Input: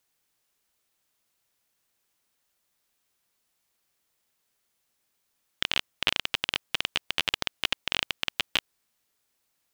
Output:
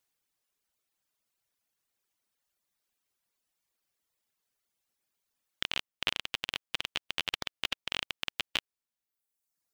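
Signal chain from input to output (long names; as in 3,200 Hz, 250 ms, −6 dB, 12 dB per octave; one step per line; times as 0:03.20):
reverb reduction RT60 1.2 s
level −5 dB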